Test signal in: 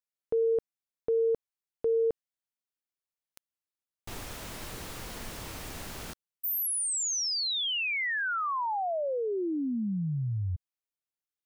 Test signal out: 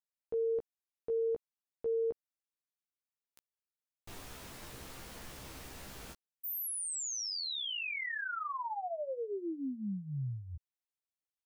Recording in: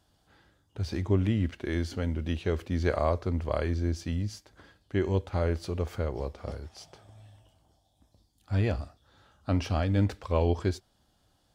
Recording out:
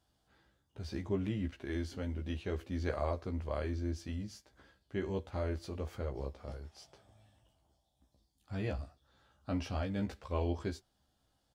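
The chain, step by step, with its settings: doubler 15 ms -4 dB; gain -9 dB

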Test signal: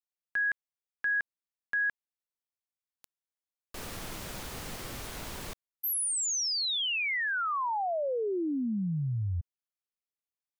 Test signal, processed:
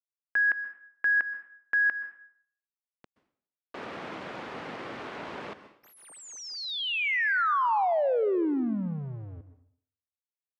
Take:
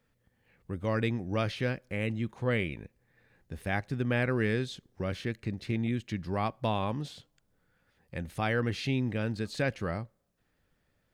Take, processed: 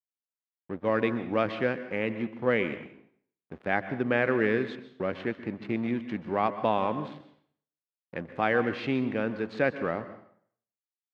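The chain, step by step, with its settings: backlash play -41 dBFS; BPF 250–2300 Hz; plate-style reverb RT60 0.58 s, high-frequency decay 0.9×, pre-delay 0.115 s, DRR 12 dB; gain +6 dB

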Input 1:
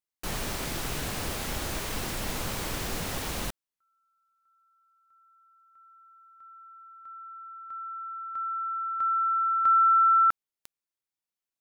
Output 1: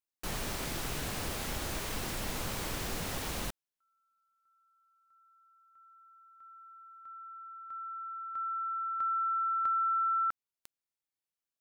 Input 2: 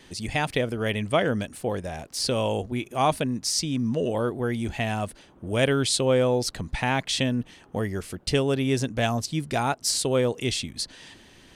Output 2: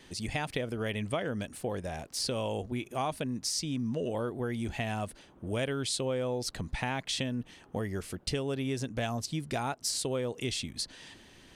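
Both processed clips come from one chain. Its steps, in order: compressor 4:1, threshold -26 dBFS; gain -3.5 dB

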